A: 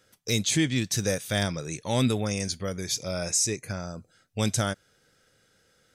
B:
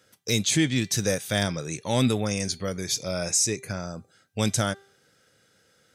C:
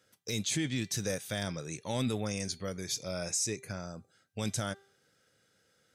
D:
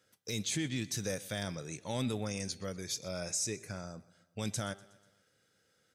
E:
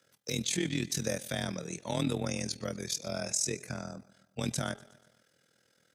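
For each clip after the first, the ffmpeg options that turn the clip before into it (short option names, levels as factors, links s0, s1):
-af "highpass=84,bandreject=f=394.7:t=h:w=4,bandreject=f=789.4:t=h:w=4,bandreject=f=1184.1:t=h:w=4,bandreject=f=1578.8:t=h:w=4,bandreject=f=1973.5:t=h:w=4,bandreject=f=2368.2:t=h:w=4,bandreject=f=2762.9:t=h:w=4,bandreject=f=3157.6:t=h:w=4,bandreject=f=3552.3:t=h:w=4,bandreject=f=3947:t=h:w=4,bandreject=f=4341.7:t=h:w=4,acontrast=25,volume=0.708"
-af "alimiter=limit=0.178:level=0:latency=1:release=12,volume=0.422"
-af "aecho=1:1:122|244|366|488:0.0841|0.0463|0.0255|0.014,volume=0.75"
-af "afreqshift=22,tremolo=f=41:d=0.788,volume=2.11"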